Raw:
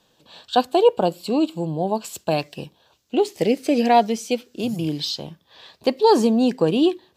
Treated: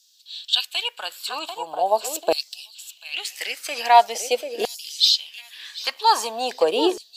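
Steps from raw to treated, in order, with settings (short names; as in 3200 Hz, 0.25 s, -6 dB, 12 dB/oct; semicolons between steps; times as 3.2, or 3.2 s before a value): tilt +2 dB/oct; thinning echo 0.741 s, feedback 25%, high-pass 420 Hz, level -12 dB; LFO high-pass saw down 0.43 Hz 420–5400 Hz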